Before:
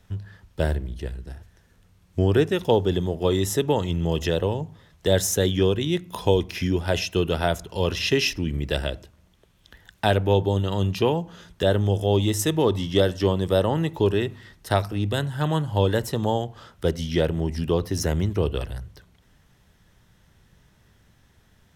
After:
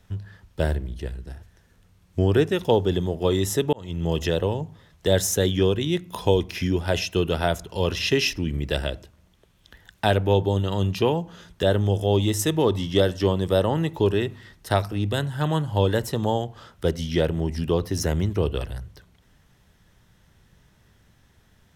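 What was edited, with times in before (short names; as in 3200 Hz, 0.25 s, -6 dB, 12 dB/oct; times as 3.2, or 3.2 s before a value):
3.73–4.09 fade in linear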